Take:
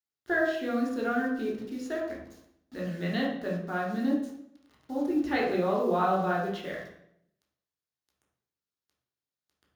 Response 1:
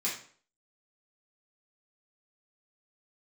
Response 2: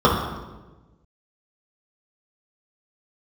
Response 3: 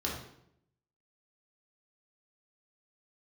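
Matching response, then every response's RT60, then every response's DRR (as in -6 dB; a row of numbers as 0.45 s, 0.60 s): 3; 0.50 s, 1.2 s, 0.75 s; -7.5 dB, -7.0 dB, -4.5 dB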